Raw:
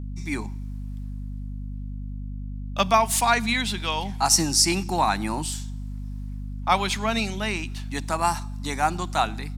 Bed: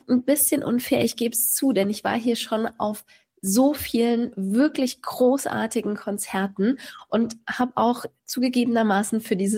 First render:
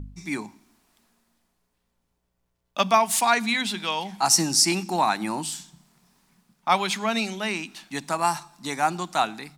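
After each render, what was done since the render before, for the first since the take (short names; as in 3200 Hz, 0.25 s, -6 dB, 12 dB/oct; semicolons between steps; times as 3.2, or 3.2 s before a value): de-hum 50 Hz, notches 5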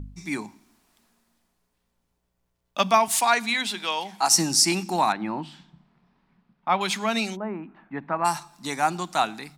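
3.08–4.31 HPF 280 Hz; 5.12–6.81 air absorption 370 m; 7.35–8.24 LPF 1100 Hz -> 2200 Hz 24 dB/oct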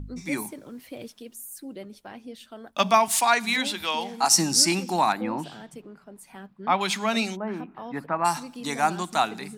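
add bed -18.5 dB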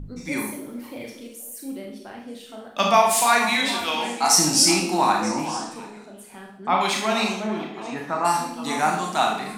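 delay with a stepping band-pass 0.233 s, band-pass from 350 Hz, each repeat 1.4 oct, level -8 dB; Schroeder reverb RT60 0.6 s, combs from 26 ms, DRR 0 dB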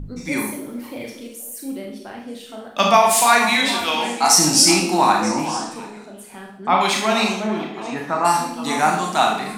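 gain +4 dB; limiter -2 dBFS, peak gain reduction 2.5 dB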